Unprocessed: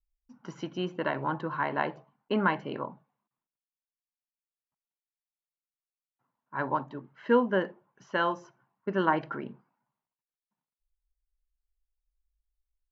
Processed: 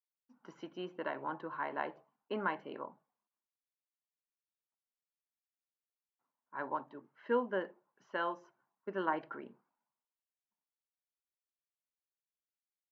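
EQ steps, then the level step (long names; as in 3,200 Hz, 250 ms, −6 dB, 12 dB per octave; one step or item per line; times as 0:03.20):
high-pass filter 280 Hz 12 dB per octave
low-pass filter 2,900 Hz 6 dB per octave
−7.5 dB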